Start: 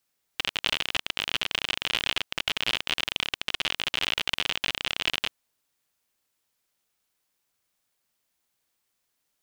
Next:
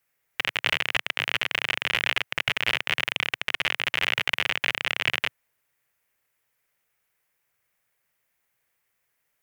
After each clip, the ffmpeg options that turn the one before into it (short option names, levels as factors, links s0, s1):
-af "equalizer=f=125:t=o:w=1:g=6,equalizer=f=250:t=o:w=1:g=-5,equalizer=f=500:t=o:w=1:g=4,equalizer=f=2000:t=o:w=1:g=10,equalizer=f=4000:t=o:w=1:g=-7,equalizer=f=8000:t=o:w=1:g=-3,equalizer=f=16000:t=o:w=1:g=4"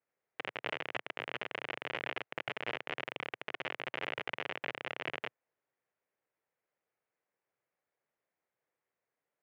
-af "bandpass=f=440:t=q:w=0.84:csg=0,volume=0.75"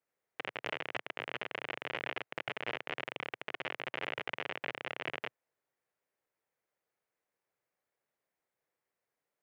-af "asoftclip=type=hard:threshold=0.0944"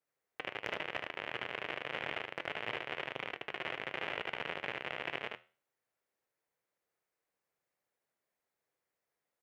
-af "flanger=delay=6.6:depth=8.4:regen=-81:speed=0.31:shape=triangular,aecho=1:1:75:0.631,volume=1.41"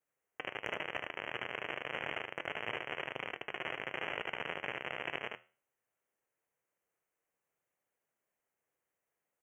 -af "asuperstop=centerf=4300:order=12:qfactor=1.7"